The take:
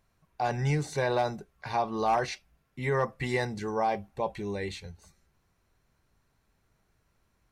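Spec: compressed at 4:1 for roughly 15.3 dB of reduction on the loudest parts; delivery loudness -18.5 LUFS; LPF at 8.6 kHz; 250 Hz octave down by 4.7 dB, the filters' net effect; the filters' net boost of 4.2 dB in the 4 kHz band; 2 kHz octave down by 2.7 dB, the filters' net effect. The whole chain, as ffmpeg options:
-af "lowpass=8600,equalizer=f=250:t=o:g=-7.5,equalizer=f=2000:t=o:g=-4.5,equalizer=f=4000:t=o:g=6,acompressor=threshold=0.00708:ratio=4,volume=22.4"

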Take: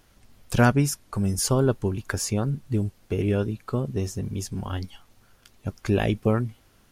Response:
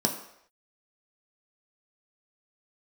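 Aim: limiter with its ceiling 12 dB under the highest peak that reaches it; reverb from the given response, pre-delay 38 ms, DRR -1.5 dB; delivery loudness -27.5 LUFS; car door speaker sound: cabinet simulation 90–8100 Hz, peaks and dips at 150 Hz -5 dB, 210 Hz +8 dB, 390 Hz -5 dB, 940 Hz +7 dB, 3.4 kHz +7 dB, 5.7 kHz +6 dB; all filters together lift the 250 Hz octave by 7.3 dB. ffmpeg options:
-filter_complex "[0:a]equalizer=f=250:t=o:g=4.5,alimiter=limit=0.168:level=0:latency=1,asplit=2[s0][s1];[1:a]atrim=start_sample=2205,adelay=38[s2];[s1][s2]afir=irnorm=-1:irlink=0,volume=0.422[s3];[s0][s3]amix=inputs=2:normalize=0,highpass=90,equalizer=f=150:t=q:w=4:g=-5,equalizer=f=210:t=q:w=4:g=8,equalizer=f=390:t=q:w=4:g=-5,equalizer=f=940:t=q:w=4:g=7,equalizer=f=3400:t=q:w=4:g=7,equalizer=f=5700:t=q:w=4:g=6,lowpass=f=8100:w=0.5412,lowpass=f=8100:w=1.3066,volume=0.211"

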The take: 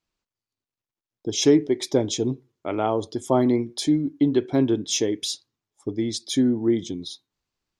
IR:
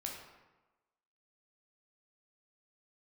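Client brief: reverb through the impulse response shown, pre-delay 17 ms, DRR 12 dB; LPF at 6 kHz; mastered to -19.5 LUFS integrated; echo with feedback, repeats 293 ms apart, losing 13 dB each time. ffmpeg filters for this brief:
-filter_complex "[0:a]lowpass=6000,aecho=1:1:293|586|879:0.224|0.0493|0.0108,asplit=2[s0][s1];[1:a]atrim=start_sample=2205,adelay=17[s2];[s1][s2]afir=irnorm=-1:irlink=0,volume=0.266[s3];[s0][s3]amix=inputs=2:normalize=0,volume=1.5"

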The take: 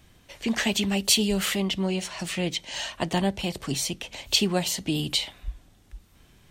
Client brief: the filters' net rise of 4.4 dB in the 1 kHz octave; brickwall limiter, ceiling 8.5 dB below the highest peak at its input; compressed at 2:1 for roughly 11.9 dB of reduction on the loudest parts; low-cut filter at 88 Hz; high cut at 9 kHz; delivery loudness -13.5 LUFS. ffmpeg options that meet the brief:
-af "highpass=88,lowpass=9000,equalizer=f=1000:t=o:g=6,acompressor=threshold=0.0112:ratio=2,volume=15,alimiter=limit=0.708:level=0:latency=1"

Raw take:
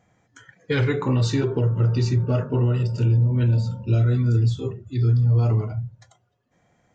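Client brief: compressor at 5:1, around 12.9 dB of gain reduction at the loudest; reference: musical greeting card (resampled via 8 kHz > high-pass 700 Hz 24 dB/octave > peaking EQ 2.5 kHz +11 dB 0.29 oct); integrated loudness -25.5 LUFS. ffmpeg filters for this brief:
-af "acompressor=threshold=0.0282:ratio=5,aresample=8000,aresample=44100,highpass=f=700:w=0.5412,highpass=f=700:w=1.3066,equalizer=f=2500:t=o:w=0.29:g=11,volume=11.2"

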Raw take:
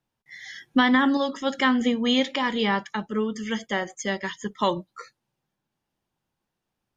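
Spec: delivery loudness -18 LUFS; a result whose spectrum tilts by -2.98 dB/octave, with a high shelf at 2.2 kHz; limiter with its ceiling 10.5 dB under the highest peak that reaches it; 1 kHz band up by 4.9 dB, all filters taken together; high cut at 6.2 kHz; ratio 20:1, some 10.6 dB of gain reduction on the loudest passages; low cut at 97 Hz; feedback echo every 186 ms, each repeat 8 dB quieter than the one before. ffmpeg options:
-af "highpass=97,lowpass=6200,equalizer=f=1000:t=o:g=4,highshelf=f=2200:g=8.5,acompressor=threshold=0.0794:ratio=20,alimiter=limit=0.106:level=0:latency=1,aecho=1:1:186|372|558|744|930:0.398|0.159|0.0637|0.0255|0.0102,volume=3.98"

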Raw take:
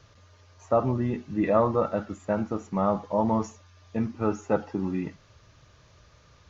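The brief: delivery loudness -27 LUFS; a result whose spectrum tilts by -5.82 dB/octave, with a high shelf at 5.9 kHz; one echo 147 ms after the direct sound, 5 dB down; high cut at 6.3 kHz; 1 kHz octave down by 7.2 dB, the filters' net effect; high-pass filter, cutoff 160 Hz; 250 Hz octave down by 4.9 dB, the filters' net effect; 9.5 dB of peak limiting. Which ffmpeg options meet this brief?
-af "highpass=160,lowpass=6300,equalizer=f=250:t=o:g=-4.5,equalizer=f=1000:t=o:g=-9,highshelf=f=5900:g=-9,alimiter=limit=0.0708:level=0:latency=1,aecho=1:1:147:0.562,volume=2.24"

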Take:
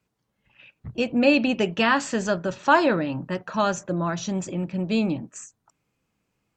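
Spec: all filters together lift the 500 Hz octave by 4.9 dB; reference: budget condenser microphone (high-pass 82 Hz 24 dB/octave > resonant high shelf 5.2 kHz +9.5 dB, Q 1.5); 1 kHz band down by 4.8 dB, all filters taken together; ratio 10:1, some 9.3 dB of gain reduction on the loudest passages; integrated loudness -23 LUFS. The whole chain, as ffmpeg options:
-af "equalizer=f=500:t=o:g=8.5,equalizer=f=1000:t=o:g=-8.5,acompressor=threshold=0.112:ratio=10,highpass=f=82:w=0.5412,highpass=f=82:w=1.3066,highshelf=f=5200:t=q:w=1.5:g=9.5,volume=1.41"

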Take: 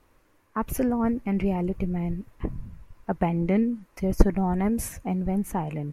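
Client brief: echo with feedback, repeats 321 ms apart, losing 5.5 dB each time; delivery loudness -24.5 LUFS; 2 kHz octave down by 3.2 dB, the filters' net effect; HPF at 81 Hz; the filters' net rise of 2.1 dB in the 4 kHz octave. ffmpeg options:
-af "highpass=81,equalizer=f=2000:t=o:g=-5,equalizer=f=4000:t=o:g=5,aecho=1:1:321|642|963|1284|1605|1926|2247:0.531|0.281|0.149|0.079|0.0419|0.0222|0.0118,volume=1.26"

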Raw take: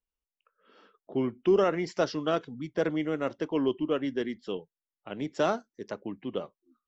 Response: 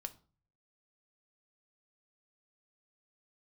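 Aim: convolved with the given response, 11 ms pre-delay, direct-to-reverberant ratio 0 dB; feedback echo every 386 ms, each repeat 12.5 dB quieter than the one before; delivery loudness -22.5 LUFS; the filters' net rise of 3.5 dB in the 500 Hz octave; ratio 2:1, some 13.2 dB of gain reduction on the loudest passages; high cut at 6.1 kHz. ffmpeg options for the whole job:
-filter_complex "[0:a]lowpass=6100,equalizer=f=500:t=o:g=4.5,acompressor=threshold=0.00891:ratio=2,aecho=1:1:386|772|1158:0.237|0.0569|0.0137,asplit=2[s0][s1];[1:a]atrim=start_sample=2205,adelay=11[s2];[s1][s2]afir=irnorm=-1:irlink=0,volume=1.5[s3];[s0][s3]amix=inputs=2:normalize=0,volume=4.22"

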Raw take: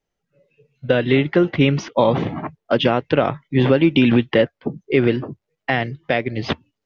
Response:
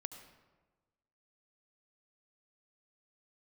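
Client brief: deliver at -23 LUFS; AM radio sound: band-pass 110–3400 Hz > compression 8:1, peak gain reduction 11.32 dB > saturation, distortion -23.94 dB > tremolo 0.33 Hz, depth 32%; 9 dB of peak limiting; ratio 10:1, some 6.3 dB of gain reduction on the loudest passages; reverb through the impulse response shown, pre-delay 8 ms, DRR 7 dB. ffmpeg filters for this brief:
-filter_complex "[0:a]acompressor=threshold=0.158:ratio=10,alimiter=limit=0.237:level=0:latency=1,asplit=2[s0][s1];[1:a]atrim=start_sample=2205,adelay=8[s2];[s1][s2]afir=irnorm=-1:irlink=0,volume=0.631[s3];[s0][s3]amix=inputs=2:normalize=0,highpass=110,lowpass=3400,acompressor=threshold=0.0501:ratio=8,asoftclip=threshold=0.126,tremolo=f=0.33:d=0.32,volume=3.55"

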